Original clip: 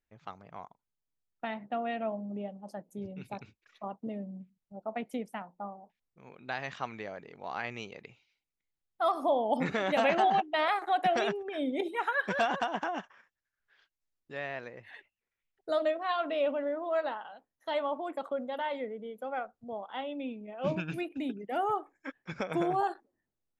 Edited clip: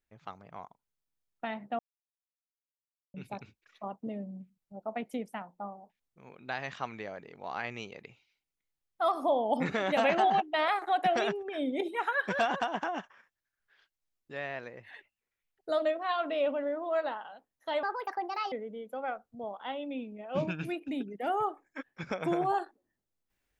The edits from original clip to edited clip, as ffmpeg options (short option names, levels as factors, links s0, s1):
-filter_complex "[0:a]asplit=5[s0][s1][s2][s3][s4];[s0]atrim=end=1.79,asetpts=PTS-STARTPTS,afade=t=out:st=1.786:d=0.004:c=hsin[s5];[s1]atrim=start=1.79:end=3.14,asetpts=PTS-STARTPTS,volume=0[s6];[s2]atrim=start=3.14:end=17.834,asetpts=PTS-STARTPTS,afade=t=in:d=0.004:c=hsin[s7];[s3]atrim=start=17.83:end=18.81,asetpts=PTS-STARTPTS,asetrate=62622,aresample=44100,atrim=end_sample=30435,asetpts=PTS-STARTPTS[s8];[s4]atrim=start=18.806[s9];[s5][s6][s7]concat=n=3:v=0:a=1[s10];[s10][s8]acrossfade=d=0.004:c1=hsin:c2=hsin[s11];[s11][s9]acrossfade=d=0.004:c1=hsin:c2=hsin"